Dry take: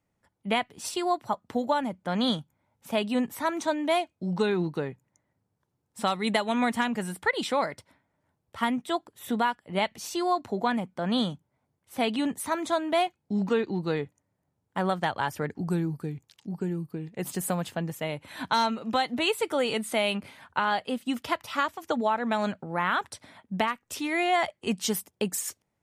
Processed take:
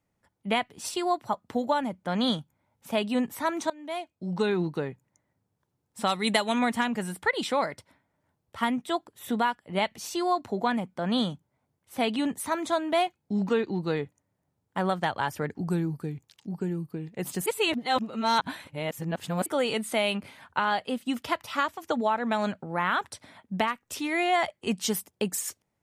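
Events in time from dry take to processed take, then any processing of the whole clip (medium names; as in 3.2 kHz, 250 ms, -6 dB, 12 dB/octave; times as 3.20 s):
3.70–4.49 s: fade in, from -22.5 dB
6.09–6.59 s: treble shelf 3.3 kHz +7.5 dB
17.46–19.46 s: reverse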